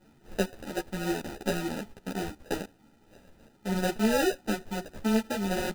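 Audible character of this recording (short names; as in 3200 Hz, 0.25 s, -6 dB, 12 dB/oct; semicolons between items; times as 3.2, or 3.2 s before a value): a buzz of ramps at a fixed pitch in blocks of 8 samples; phasing stages 12, 2.9 Hz, lowest notch 600–1200 Hz; aliases and images of a low sample rate 1100 Hz, jitter 0%; a shimmering, thickened sound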